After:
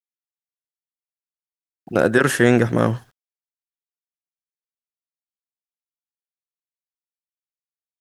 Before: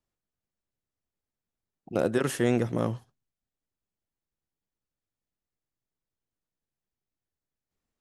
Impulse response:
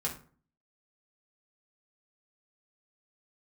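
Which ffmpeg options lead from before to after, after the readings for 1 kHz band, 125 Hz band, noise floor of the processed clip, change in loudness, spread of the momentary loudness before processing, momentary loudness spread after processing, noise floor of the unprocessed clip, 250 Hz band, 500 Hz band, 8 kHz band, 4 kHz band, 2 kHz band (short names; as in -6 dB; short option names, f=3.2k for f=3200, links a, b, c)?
+11.5 dB, +9.5 dB, under -85 dBFS, +10.0 dB, 8 LU, 9 LU, under -85 dBFS, +9.0 dB, +9.0 dB, +9.0 dB, +9.5 dB, +16.0 dB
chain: -af "acrusher=bits=11:mix=0:aa=0.000001,equalizer=f=1.6k:w=2.8:g=9.5,dynaudnorm=f=350:g=9:m=11.5dB,volume=1dB"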